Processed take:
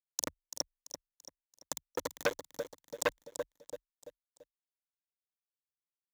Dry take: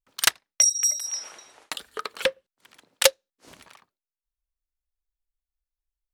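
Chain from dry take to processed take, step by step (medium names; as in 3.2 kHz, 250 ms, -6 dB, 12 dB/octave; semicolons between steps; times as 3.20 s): ring modulator 54 Hz; elliptic band-stop 810–5300 Hz, stop band 40 dB; de-hum 110.4 Hz, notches 29; low-pass that closes with the level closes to 440 Hz, closed at -24 dBFS; treble shelf 11 kHz -6 dB; peak limiter -24.5 dBFS, peak gain reduction 8.5 dB; small samples zeroed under -38 dBFS; rippled EQ curve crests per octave 1.1, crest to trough 8 dB; on a send: feedback delay 337 ms, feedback 42%, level -10.5 dB; on the sum: transformer saturation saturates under 2 kHz; trim +9 dB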